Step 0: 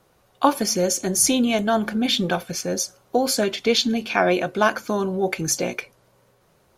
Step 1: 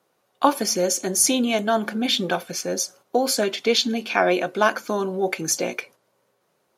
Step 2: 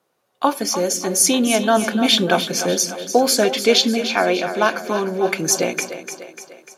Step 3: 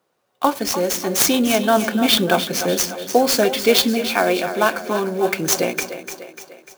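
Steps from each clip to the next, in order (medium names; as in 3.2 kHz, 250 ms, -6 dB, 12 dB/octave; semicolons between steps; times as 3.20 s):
gate -46 dBFS, range -7 dB; high-pass 220 Hz 12 dB/octave
level rider gain up to 10 dB; two-band feedback delay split 330 Hz, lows 174 ms, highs 297 ms, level -10.5 dB; trim -1 dB
sampling jitter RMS 0.021 ms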